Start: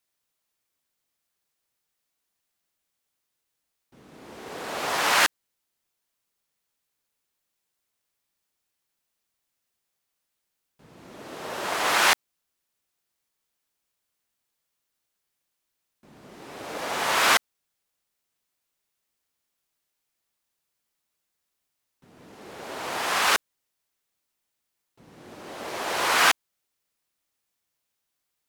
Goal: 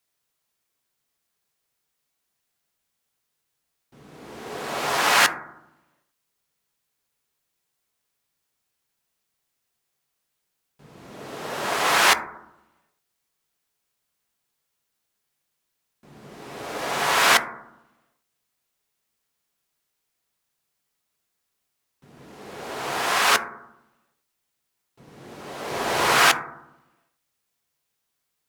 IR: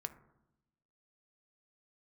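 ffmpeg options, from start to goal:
-filter_complex "[0:a]asettb=1/sr,asplit=3[a][b][c];[a]atrim=end=25.704[d];[b]atrim=start=25.7:end=26.19,asetpts=PTS-STARTPTS,afade=t=in:d=0.004:c=qsin,afade=t=out:st=0.486:d=0.004:c=qsin,lowshelf=f=290:g=9[e];[c]atrim=start=26.186[f];[d][e]acrossfade=d=0.004:c1=hsin:c2=qsin[g];[g][f]acrossfade=d=0.004:c1=qsin:c2=hsin[h];[1:a]atrim=start_sample=2205[i];[h][i]afir=irnorm=-1:irlink=0,volume=5.5dB"

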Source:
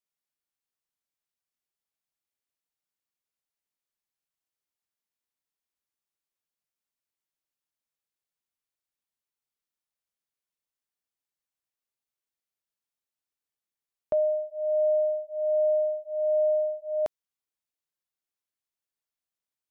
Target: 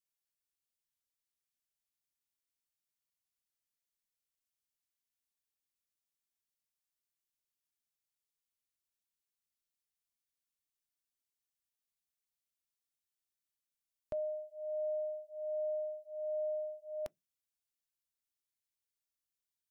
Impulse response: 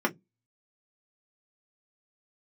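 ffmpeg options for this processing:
-filter_complex "[0:a]equalizer=f=630:w=0.4:g=-14.5,asplit=2[a][b];[1:a]atrim=start_sample=2205[c];[b][c]afir=irnorm=-1:irlink=0,volume=-27.5dB[d];[a][d]amix=inputs=2:normalize=0"

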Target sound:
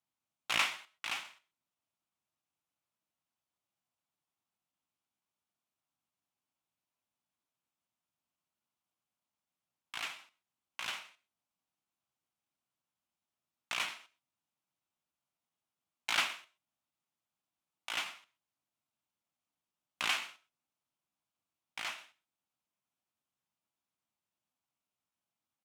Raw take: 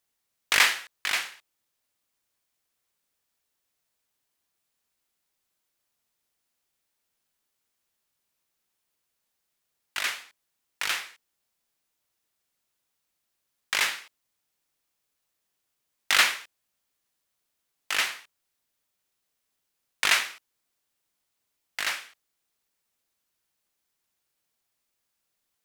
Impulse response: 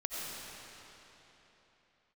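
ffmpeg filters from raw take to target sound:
-filter_complex "[0:a]equalizer=f=400:t=o:w=0.67:g=-11,equalizer=f=1.6k:t=o:w=0.67:g=-9,equalizer=f=4k:t=o:w=0.67:g=-5,asetrate=49501,aresample=44100,atempo=0.890899,highpass=100,aemphasis=mode=reproduction:type=75kf,asplit=2[a][b];[1:a]atrim=start_sample=2205,atrim=end_sample=6174[c];[b][c]afir=irnorm=-1:irlink=0,volume=-14.5dB[d];[a][d]amix=inputs=2:normalize=0,volume=-3dB"

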